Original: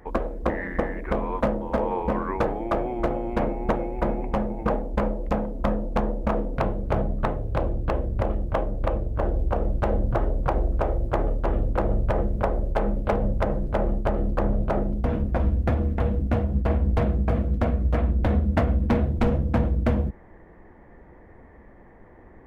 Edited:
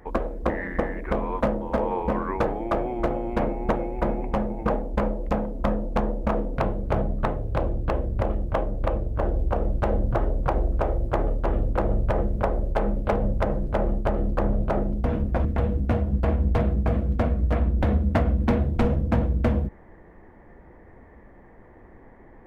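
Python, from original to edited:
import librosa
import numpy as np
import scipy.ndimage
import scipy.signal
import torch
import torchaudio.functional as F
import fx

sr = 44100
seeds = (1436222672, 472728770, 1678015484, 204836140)

y = fx.edit(x, sr, fx.cut(start_s=15.45, length_s=0.42), tone=tone)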